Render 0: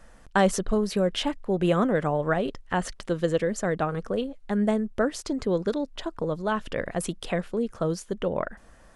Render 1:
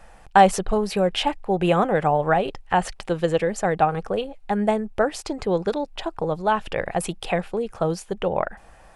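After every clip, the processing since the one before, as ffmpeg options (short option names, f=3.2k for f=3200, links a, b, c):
-af "equalizer=f=250:t=o:w=0.33:g=-10,equalizer=f=800:t=o:w=0.33:g=11,equalizer=f=2.5k:t=o:w=0.33:g=6,equalizer=f=6.3k:t=o:w=0.33:g=-3,volume=3dB"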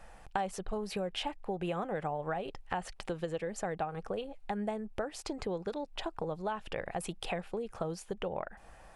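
-af "acompressor=threshold=-29dB:ratio=4,volume=-5dB"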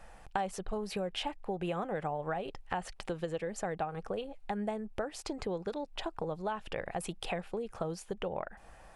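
-af anull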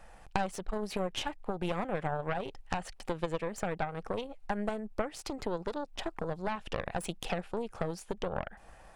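-af "aeval=exprs='0.133*(cos(1*acos(clip(val(0)/0.133,-1,1)))-cos(1*PI/2))+0.0473*(cos(4*acos(clip(val(0)/0.133,-1,1)))-cos(4*PI/2))':c=same"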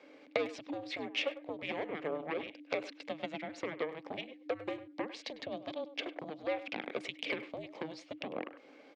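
-filter_complex "[0:a]afreqshift=-310,highpass=460,equalizer=f=560:t=q:w=4:g=5,equalizer=f=970:t=q:w=4:g=-6,equalizer=f=1.4k:t=q:w=4:g=-10,equalizer=f=2.2k:t=q:w=4:g=6,equalizer=f=3.4k:t=q:w=4:g=3,lowpass=f=4.9k:w=0.5412,lowpass=f=4.9k:w=1.3066,asplit=2[a][b];[b]adelay=100,highpass=300,lowpass=3.4k,asoftclip=type=hard:threshold=-27.5dB,volume=-14dB[c];[a][c]amix=inputs=2:normalize=0,volume=1dB"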